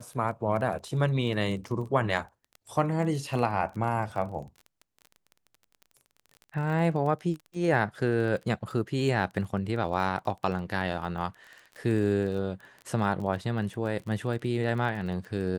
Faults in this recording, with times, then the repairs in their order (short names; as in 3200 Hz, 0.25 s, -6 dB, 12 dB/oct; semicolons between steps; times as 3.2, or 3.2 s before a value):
crackle 22/s -36 dBFS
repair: de-click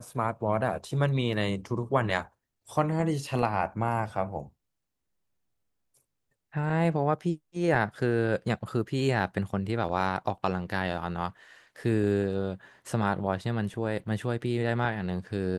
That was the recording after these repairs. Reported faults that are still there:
none